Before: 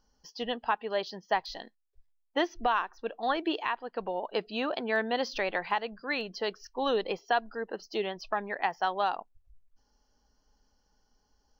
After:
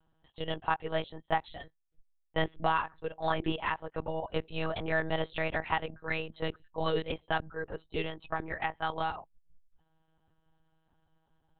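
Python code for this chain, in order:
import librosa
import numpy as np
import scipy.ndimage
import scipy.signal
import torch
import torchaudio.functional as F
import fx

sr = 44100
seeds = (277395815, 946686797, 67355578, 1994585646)

y = fx.dynamic_eq(x, sr, hz=720.0, q=1.9, threshold_db=-40.0, ratio=4.0, max_db=-5, at=(6.89, 9.2))
y = fx.lpc_monotone(y, sr, seeds[0], pitch_hz=160.0, order=10)
y = y * librosa.db_to_amplitude(-1.0)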